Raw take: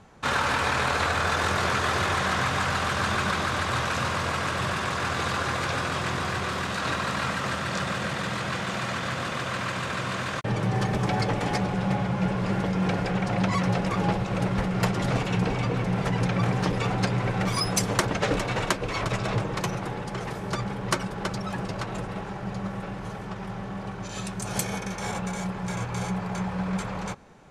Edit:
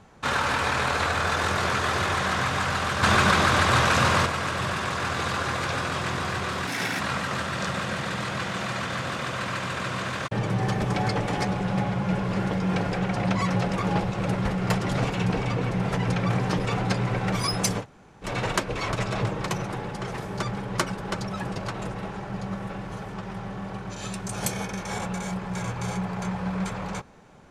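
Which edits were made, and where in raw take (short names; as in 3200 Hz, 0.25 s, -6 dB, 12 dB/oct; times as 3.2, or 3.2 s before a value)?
3.03–4.26 gain +6.5 dB
6.67–7.13 speed 139%
17.94–18.39 room tone, crossfade 0.10 s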